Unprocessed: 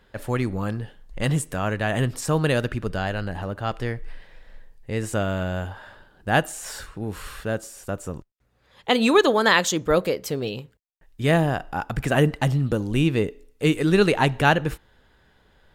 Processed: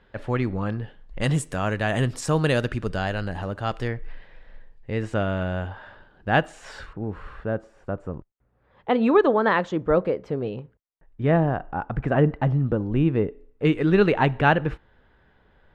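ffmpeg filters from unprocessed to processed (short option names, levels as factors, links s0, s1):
-af "asetnsamples=n=441:p=0,asendcmd='1.21 lowpass f 8600;3.88 lowpass f 3200;6.93 lowpass f 1400;13.65 lowpass f 2400',lowpass=3300"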